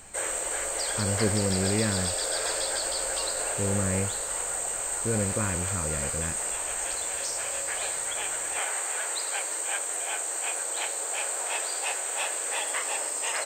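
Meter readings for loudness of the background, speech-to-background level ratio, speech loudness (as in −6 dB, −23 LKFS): −28.0 LKFS, −3.0 dB, −31.0 LKFS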